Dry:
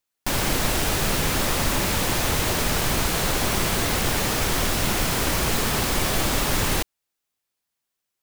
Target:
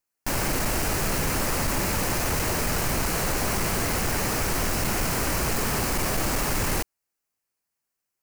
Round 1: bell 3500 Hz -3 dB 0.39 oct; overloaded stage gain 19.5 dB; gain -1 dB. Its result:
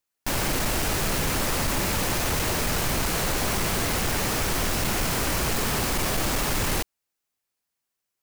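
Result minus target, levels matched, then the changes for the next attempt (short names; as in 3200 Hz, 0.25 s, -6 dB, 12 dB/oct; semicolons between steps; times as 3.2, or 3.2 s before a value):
4000 Hz band +2.5 dB
change: bell 3500 Hz -11.5 dB 0.39 oct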